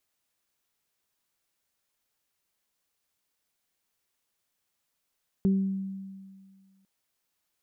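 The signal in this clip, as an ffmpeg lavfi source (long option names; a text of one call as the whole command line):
ffmpeg -f lavfi -i "aevalsrc='0.112*pow(10,-3*t/1.88)*sin(2*PI*193*t)+0.0355*pow(10,-3*t/0.55)*sin(2*PI*386*t)':duration=1.4:sample_rate=44100" out.wav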